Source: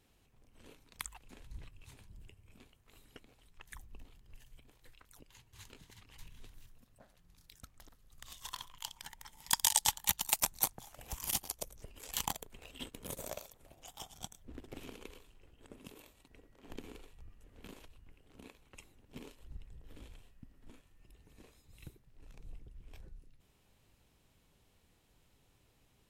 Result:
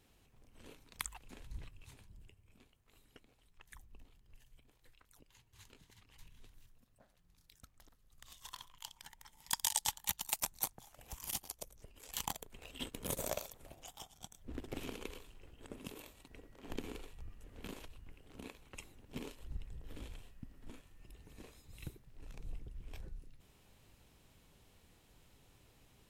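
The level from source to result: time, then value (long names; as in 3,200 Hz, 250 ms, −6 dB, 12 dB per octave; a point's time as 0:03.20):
0:01.56 +1.5 dB
0:02.46 −5.5 dB
0:12.03 −5.5 dB
0:13.10 +4.5 dB
0:13.71 +4.5 dB
0:14.19 −8 dB
0:14.52 +4.5 dB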